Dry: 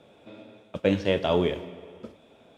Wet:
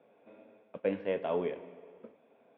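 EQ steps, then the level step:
loudspeaker in its box 330–2,000 Hz, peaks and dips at 340 Hz −9 dB, 600 Hz −5 dB, 870 Hz −5 dB, 1,300 Hz −9 dB, 1,800 Hz −5 dB
−2.5 dB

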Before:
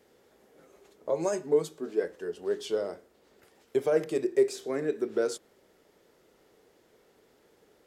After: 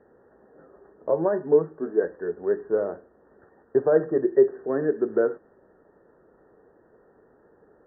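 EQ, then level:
linear-phase brick-wall low-pass 1,900 Hz
high-frequency loss of the air 270 metres
+6.5 dB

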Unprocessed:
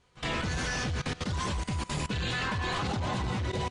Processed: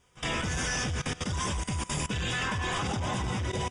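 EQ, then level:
Butterworth band-reject 4,200 Hz, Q 4.4
high-shelf EQ 5,400 Hz +10 dB
0.0 dB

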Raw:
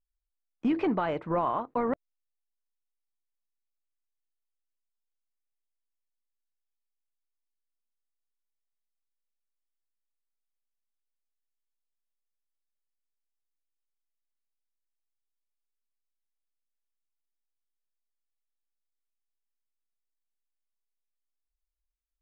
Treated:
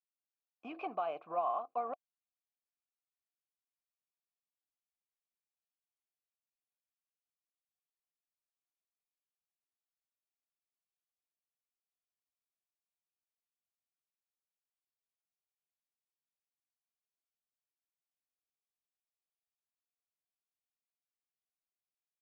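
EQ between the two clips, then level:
formant filter a
high-shelf EQ 3,100 Hz +12 dB
0.0 dB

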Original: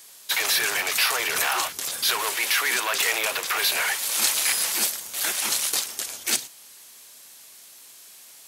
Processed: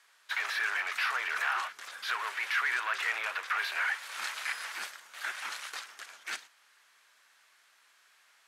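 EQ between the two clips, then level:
resonant band-pass 1,500 Hz, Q 2
−2.0 dB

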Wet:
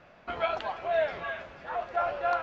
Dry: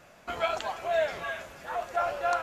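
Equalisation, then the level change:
Bessel low-pass filter 3,200 Hz, order 6
0.0 dB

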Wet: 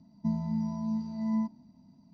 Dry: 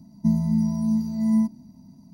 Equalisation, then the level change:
low-pass filter 4,600 Hz 24 dB per octave
dynamic equaliser 920 Hz, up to +5 dB, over −50 dBFS, Q 2.1
low-shelf EQ 330 Hz −7.5 dB
−4.0 dB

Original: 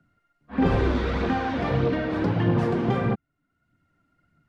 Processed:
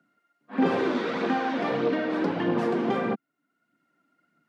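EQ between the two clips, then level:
high-pass filter 210 Hz 24 dB per octave
0.0 dB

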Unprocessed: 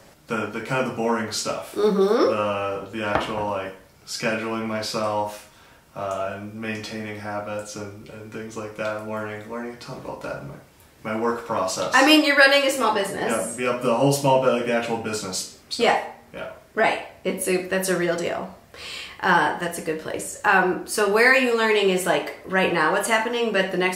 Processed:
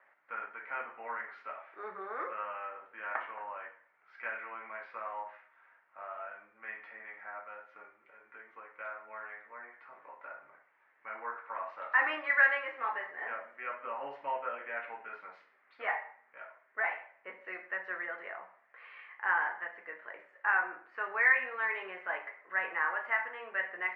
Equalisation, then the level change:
high-pass filter 1,400 Hz 12 dB per octave
Chebyshev low-pass filter 2,000 Hz, order 4
−5.5 dB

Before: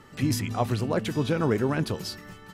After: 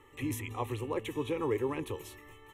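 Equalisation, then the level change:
parametric band 140 Hz −4 dB 0.78 octaves
phaser with its sweep stopped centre 990 Hz, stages 8
−4.0 dB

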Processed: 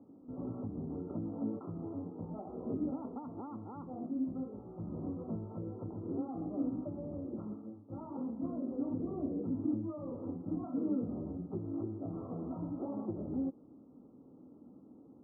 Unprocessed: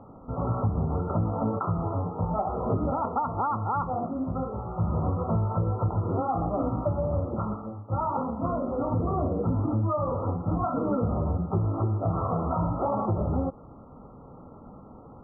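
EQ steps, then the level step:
resonant band-pass 290 Hz, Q 3.2
high-frequency loss of the air 450 metres
−1.5 dB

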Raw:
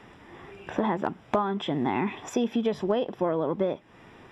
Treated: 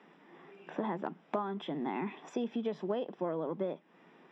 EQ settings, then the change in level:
elliptic high-pass filter 160 Hz
high-frequency loss of the air 100 metres
−8.0 dB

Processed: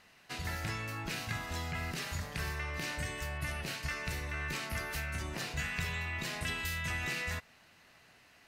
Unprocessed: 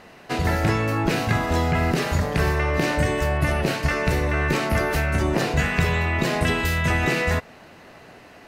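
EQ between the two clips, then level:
guitar amp tone stack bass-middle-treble 5-5-5
−2.0 dB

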